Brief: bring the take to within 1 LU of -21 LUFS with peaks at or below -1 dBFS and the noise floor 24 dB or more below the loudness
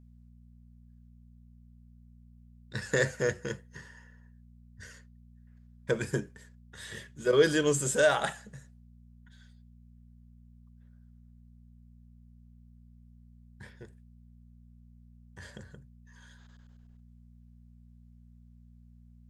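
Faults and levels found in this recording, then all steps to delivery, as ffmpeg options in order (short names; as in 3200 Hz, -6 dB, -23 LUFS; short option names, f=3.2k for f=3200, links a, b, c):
hum 60 Hz; harmonics up to 240 Hz; hum level -52 dBFS; loudness -29.0 LUFS; peak -10.5 dBFS; loudness target -21.0 LUFS
-> -af "bandreject=f=60:t=h:w=4,bandreject=f=120:t=h:w=4,bandreject=f=180:t=h:w=4,bandreject=f=240:t=h:w=4"
-af "volume=8dB"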